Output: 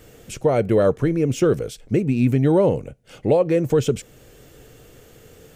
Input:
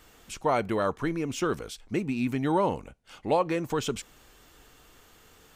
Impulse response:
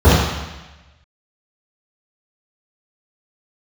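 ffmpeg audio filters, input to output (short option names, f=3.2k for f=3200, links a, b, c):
-af "equalizer=f=125:t=o:w=1:g=11,equalizer=f=500:t=o:w=1:g=10,equalizer=f=1k:t=o:w=1:g=-10,equalizer=f=4k:t=o:w=1:g=-4,alimiter=limit=-14.5dB:level=0:latency=1:release=474,volume=6.5dB"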